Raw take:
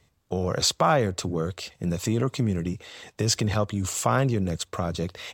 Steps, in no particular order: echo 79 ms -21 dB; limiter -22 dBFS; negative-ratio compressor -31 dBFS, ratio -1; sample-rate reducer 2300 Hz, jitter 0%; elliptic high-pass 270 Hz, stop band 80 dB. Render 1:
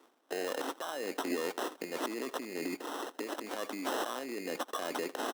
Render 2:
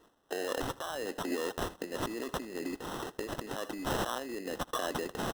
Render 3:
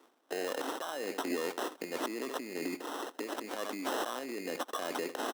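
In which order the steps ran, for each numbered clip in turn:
negative-ratio compressor > echo > sample-rate reducer > elliptic high-pass > limiter; negative-ratio compressor > elliptic high-pass > limiter > sample-rate reducer > echo; echo > negative-ratio compressor > sample-rate reducer > elliptic high-pass > limiter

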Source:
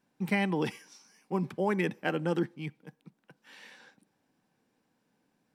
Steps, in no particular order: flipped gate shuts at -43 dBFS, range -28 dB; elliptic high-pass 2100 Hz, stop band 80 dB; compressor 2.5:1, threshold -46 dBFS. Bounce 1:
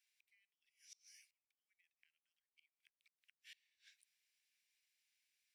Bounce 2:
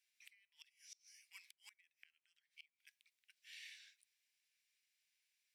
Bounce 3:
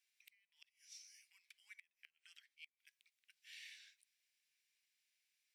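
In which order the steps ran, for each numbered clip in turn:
compressor > flipped gate > elliptic high-pass; elliptic high-pass > compressor > flipped gate; compressor > elliptic high-pass > flipped gate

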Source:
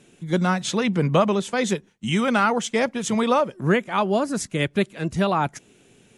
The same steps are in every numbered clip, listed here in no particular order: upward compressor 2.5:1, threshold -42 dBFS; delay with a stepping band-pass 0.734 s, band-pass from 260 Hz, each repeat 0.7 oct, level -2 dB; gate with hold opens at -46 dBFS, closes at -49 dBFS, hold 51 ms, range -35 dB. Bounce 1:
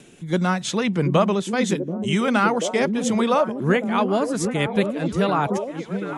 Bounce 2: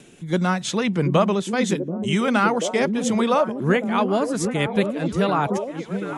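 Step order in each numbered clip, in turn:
delay with a stepping band-pass > upward compressor > gate with hold; upward compressor > gate with hold > delay with a stepping band-pass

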